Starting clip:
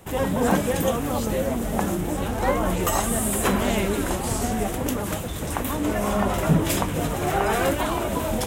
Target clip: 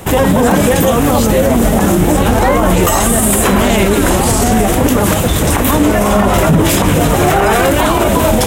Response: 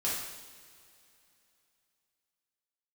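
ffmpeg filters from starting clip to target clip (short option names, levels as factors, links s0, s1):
-af "alimiter=level_in=8.91:limit=0.891:release=50:level=0:latency=1,volume=0.891"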